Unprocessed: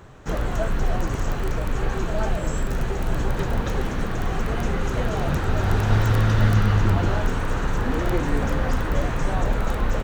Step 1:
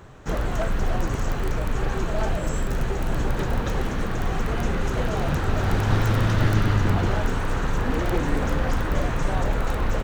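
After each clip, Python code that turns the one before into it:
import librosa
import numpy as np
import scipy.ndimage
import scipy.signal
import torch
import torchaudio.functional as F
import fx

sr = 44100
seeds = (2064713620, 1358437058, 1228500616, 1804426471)

y = np.minimum(x, 2.0 * 10.0 ** (-17.5 / 20.0) - x)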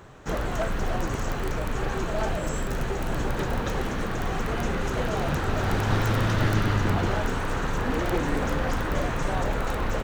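y = fx.low_shelf(x, sr, hz=150.0, db=-5.5)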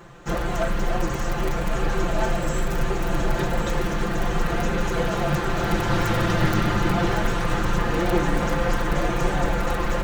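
y = x + 0.96 * np.pad(x, (int(5.8 * sr / 1000.0), 0))[:len(x)]
y = y + 10.0 ** (-7.5 / 20.0) * np.pad(y, (int(1109 * sr / 1000.0), 0))[:len(y)]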